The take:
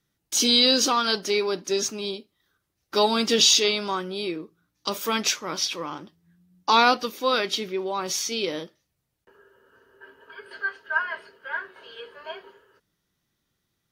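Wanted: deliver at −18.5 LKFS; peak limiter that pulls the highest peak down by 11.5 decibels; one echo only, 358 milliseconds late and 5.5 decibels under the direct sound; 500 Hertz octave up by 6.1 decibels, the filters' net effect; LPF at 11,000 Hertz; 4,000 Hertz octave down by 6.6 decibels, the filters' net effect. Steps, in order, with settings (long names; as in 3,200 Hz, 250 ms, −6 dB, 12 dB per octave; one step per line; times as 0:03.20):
low-pass filter 11,000 Hz
parametric band 500 Hz +7.5 dB
parametric band 4,000 Hz −8 dB
brickwall limiter −16 dBFS
single-tap delay 358 ms −5.5 dB
level +8 dB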